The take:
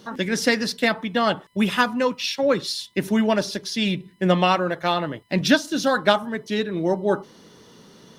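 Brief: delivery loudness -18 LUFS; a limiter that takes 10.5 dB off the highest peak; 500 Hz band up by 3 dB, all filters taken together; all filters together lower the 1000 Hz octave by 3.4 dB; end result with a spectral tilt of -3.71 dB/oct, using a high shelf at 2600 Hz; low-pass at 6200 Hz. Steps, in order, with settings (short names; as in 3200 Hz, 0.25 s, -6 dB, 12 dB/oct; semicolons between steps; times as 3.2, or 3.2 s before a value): LPF 6200 Hz; bell 500 Hz +5.5 dB; bell 1000 Hz -7.5 dB; high shelf 2600 Hz +3 dB; gain +6 dB; limiter -6.5 dBFS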